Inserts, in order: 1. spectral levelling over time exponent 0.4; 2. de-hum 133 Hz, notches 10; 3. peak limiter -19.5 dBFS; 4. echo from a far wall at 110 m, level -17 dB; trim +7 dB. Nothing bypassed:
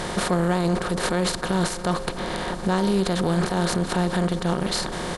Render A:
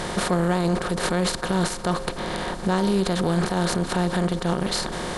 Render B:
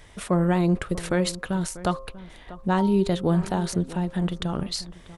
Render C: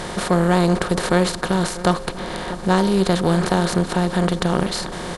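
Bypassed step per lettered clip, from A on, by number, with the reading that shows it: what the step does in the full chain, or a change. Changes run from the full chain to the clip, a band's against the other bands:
4, echo-to-direct -19.0 dB to none; 1, 125 Hz band +4.0 dB; 3, mean gain reduction 2.5 dB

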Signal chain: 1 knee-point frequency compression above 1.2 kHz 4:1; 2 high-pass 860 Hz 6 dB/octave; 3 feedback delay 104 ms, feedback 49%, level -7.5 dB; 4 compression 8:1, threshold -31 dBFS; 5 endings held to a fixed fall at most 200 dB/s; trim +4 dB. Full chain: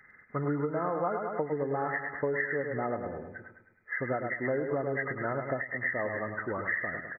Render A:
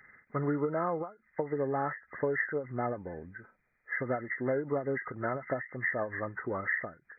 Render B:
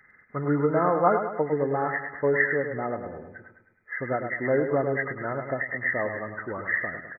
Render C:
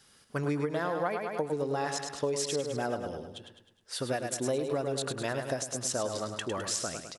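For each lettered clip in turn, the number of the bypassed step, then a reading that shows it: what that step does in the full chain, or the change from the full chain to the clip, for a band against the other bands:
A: 3, momentary loudness spread change +2 LU; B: 4, mean gain reduction 3.5 dB; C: 1, 2 kHz band -8.0 dB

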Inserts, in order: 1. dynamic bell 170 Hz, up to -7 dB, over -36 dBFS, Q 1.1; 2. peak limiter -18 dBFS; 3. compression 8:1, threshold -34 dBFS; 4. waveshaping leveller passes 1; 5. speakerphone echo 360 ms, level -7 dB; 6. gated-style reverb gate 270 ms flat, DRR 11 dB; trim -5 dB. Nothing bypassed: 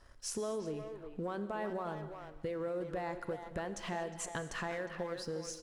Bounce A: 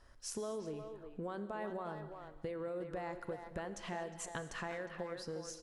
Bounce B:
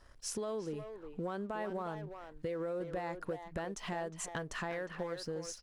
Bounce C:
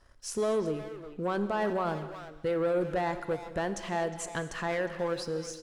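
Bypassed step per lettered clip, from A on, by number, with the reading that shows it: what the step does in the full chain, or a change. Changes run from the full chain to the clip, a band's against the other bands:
4, crest factor change +3.5 dB; 6, echo-to-direct -8.0 dB to -11.5 dB; 3, mean gain reduction 6.5 dB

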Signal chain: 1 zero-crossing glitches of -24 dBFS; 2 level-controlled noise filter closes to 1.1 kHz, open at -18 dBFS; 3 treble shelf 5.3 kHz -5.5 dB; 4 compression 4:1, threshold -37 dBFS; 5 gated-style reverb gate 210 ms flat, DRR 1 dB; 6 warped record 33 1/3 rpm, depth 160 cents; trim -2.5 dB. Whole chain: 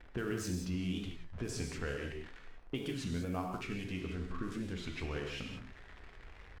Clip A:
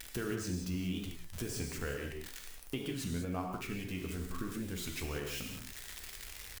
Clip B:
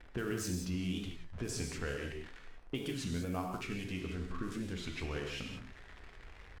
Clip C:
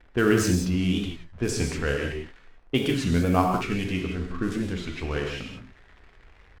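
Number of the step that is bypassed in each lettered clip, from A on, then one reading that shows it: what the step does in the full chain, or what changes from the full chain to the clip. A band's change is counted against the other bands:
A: 2, 8 kHz band +5.5 dB; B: 3, 8 kHz band +3.0 dB; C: 4, mean gain reduction 8.5 dB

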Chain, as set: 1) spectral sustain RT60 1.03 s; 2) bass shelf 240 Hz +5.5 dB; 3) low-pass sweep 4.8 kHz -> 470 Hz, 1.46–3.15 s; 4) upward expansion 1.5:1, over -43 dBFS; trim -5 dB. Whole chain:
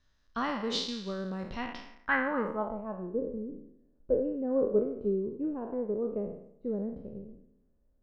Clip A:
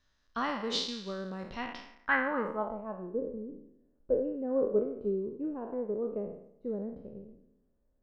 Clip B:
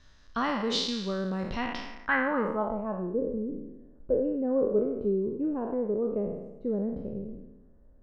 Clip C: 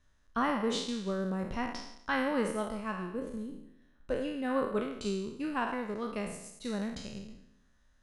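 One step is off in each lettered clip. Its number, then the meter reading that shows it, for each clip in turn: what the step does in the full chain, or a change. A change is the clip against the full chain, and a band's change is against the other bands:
2, 125 Hz band -3.0 dB; 4, loudness change +3.0 LU; 3, 500 Hz band -4.5 dB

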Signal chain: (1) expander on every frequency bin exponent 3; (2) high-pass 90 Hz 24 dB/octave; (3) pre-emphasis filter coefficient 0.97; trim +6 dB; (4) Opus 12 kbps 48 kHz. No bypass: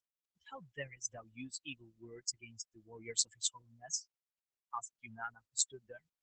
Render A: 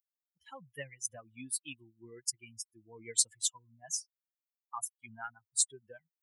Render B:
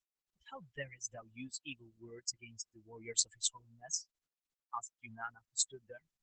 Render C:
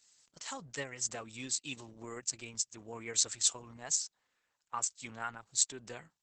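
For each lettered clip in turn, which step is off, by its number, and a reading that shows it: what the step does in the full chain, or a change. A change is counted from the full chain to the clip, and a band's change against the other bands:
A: 4, 8 kHz band +4.5 dB; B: 2, momentary loudness spread change +1 LU; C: 1, crest factor change -4.0 dB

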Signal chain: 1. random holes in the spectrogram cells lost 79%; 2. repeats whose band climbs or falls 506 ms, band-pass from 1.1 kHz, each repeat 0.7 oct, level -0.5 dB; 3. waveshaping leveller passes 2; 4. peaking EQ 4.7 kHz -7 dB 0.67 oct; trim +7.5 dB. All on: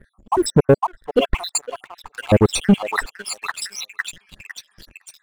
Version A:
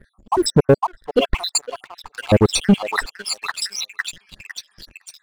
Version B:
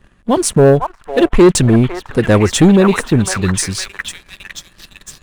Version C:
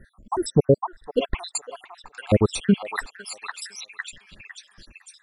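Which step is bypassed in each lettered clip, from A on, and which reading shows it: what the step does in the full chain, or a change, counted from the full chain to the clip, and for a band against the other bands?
4, 4 kHz band +4.5 dB; 1, 1 kHz band -3.5 dB; 3, crest factor change +4.5 dB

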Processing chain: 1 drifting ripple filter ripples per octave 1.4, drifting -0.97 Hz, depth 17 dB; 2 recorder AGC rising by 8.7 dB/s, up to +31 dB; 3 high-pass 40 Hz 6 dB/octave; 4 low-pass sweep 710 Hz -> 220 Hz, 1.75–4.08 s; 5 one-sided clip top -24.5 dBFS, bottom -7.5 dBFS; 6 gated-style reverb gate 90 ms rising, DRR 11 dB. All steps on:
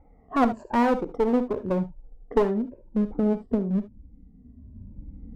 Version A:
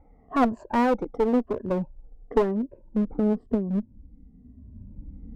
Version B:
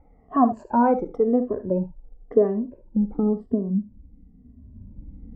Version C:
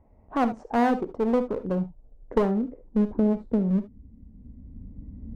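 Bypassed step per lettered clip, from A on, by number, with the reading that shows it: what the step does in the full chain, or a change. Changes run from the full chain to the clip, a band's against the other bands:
6, momentary loudness spread change +2 LU; 5, distortion -9 dB; 1, 125 Hz band +2.5 dB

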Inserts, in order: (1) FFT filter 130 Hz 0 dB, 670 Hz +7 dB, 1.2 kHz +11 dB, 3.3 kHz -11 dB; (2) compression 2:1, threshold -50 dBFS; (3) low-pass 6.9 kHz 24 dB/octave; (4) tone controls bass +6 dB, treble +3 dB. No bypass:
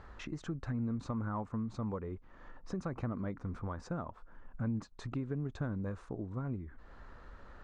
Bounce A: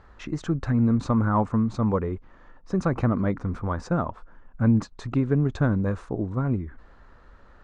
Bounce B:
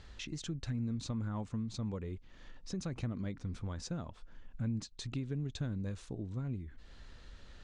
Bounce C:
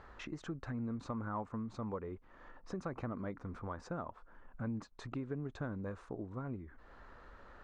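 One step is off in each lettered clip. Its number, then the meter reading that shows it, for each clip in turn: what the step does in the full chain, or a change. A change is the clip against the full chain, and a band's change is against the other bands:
2, mean gain reduction 10.0 dB; 1, 4 kHz band +12.0 dB; 4, 125 Hz band -5.0 dB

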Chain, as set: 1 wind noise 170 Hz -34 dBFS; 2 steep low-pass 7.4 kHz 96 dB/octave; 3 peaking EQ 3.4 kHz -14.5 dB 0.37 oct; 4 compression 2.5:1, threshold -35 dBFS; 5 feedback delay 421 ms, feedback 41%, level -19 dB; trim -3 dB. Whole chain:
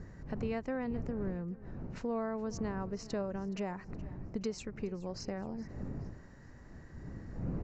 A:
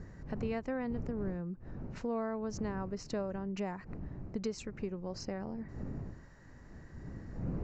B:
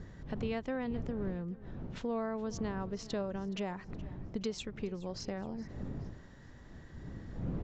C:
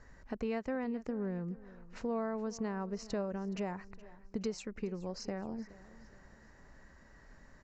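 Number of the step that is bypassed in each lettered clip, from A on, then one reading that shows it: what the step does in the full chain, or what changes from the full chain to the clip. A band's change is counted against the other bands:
5, echo-to-direct -18.0 dB to none; 3, 4 kHz band +4.5 dB; 1, 125 Hz band -5.0 dB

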